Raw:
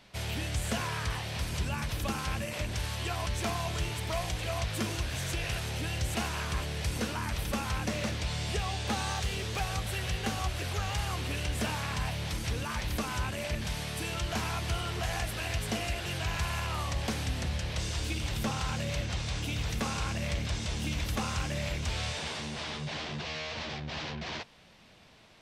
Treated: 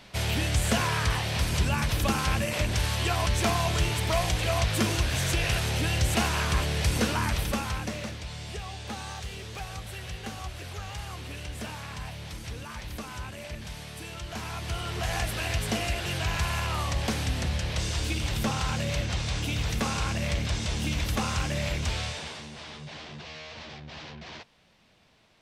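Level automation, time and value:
0:07.24 +7 dB
0:08.23 −5 dB
0:14.24 −5 dB
0:15.19 +4 dB
0:21.87 +4 dB
0:22.49 −5 dB

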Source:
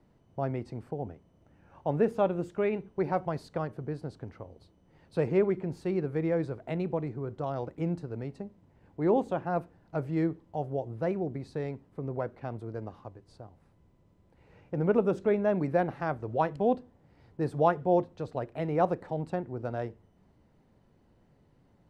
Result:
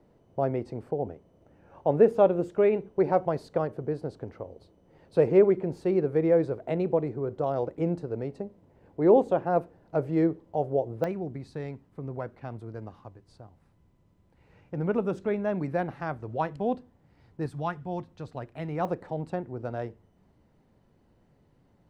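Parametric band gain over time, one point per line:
parametric band 490 Hz 1.4 octaves
+8 dB
from 0:11.04 −3 dB
from 0:17.46 −14 dB
from 0:18.08 −6.5 dB
from 0:18.85 +0.5 dB

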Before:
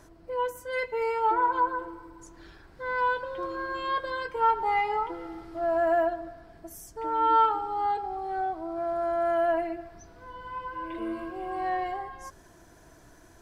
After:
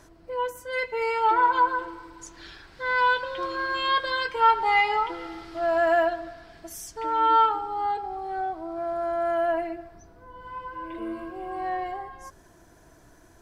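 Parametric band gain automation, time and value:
parametric band 3,700 Hz 2.7 octaves
0:00.70 +3.5 dB
0:01.41 +13 dB
0:06.89 +13 dB
0:07.67 +2 dB
0:09.67 +2 dB
0:10.29 −10 dB
0:10.49 −1.5 dB

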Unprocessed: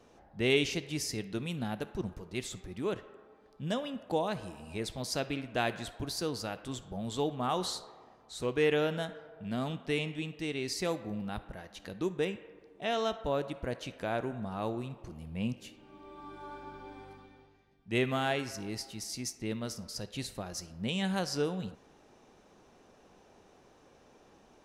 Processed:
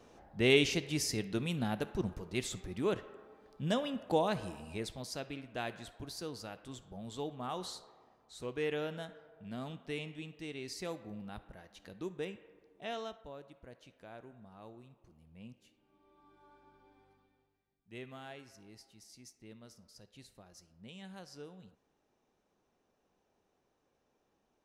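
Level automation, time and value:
0:04.53 +1 dB
0:05.15 −8 dB
0:12.92 −8 dB
0:13.34 −17.5 dB

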